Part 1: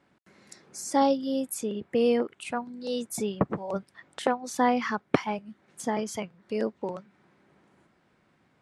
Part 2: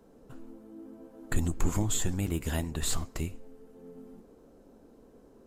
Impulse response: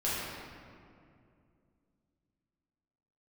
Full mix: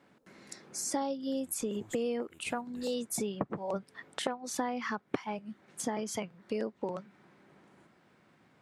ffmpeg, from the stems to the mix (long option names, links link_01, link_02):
-filter_complex "[0:a]highpass=92,volume=2dB,asplit=2[link_01][link_02];[1:a]highpass=frequency=260:poles=1,volume=-13.5dB[link_03];[link_02]apad=whole_len=241182[link_04];[link_03][link_04]sidechaincompress=threshold=-33dB:ratio=8:attack=11:release=298[link_05];[link_01][link_05]amix=inputs=2:normalize=0,acompressor=threshold=-31dB:ratio=5"